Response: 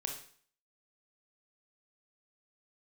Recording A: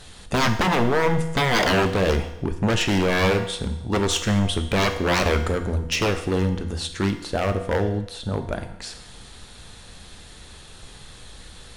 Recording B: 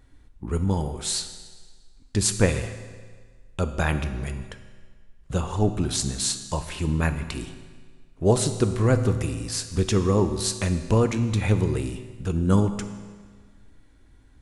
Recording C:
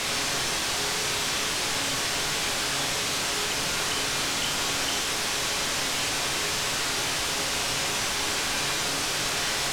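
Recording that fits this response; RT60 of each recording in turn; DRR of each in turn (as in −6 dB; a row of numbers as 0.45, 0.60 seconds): C; 0.90, 1.6, 0.50 seconds; 6.0, 8.5, 2.0 decibels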